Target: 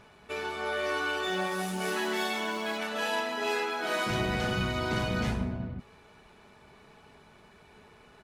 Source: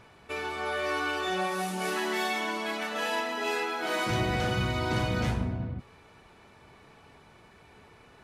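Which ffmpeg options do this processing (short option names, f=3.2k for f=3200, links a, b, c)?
-filter_complex "[0:a]tremolo=f=100:d=0.261,asettb=1/sr,asplit=3[a][b][c];[a]atrim=end=1.244[d];[b]atrim=start=1.24:end=2.78,asetpts=PTS-STARTPTS,afade=t=in:d=0.004:c=qsin,afade=t=out:st=1.536:d=0.004:c=qsin,aeval=exprs='val(0)*gte(abs(val(0)),0.00355)':c=same[e];[c]atrim=start=2.776[f];[d][e]acrossfade=d=0.004:c1=hsin:c2=qsin[g];[g][f]acrossfade=d=0.004:c1=qsin:c2=hsin,aecho=1:1:4.8:0.33"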